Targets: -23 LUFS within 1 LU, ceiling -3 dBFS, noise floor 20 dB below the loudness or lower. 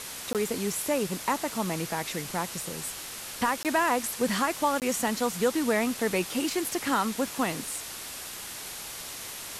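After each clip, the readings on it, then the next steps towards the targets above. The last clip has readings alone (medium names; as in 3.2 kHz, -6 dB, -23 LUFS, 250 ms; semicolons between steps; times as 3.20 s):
dropouts 3; longest dropout 18 ms; noise floor -40 dBFS; noise floor target -49 dBFS; loudness -29.0 LUFS; peak level -13.5 dBFS; loudness target -23.0 LUFS
-> interpolate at 0.33/3.63/4.80 s, 18 ms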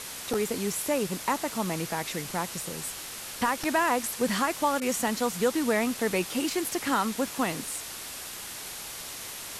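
dropouts 0; noise floor -40 dBFS; noise floor target -49 dBFS
-> noise reduction 9 dB, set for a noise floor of -40 dBFS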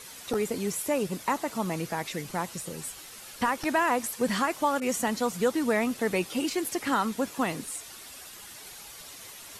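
noise floor -46 dBFS; noise floor target -49 dBFS
-> noise reduction 6 dB, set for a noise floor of -46 dBFS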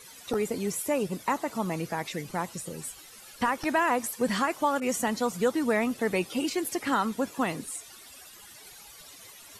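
noise floor -50 dBFS; loudness -29.0 LUFS; peak level -14.0 dBFS; loudness target -23.0 LUFS
-> trim +6 dB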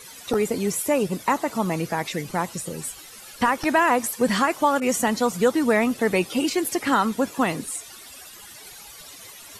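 loudness -23.0 LUFS; peak level -8.0 dBFS; noise floor -44 dBFS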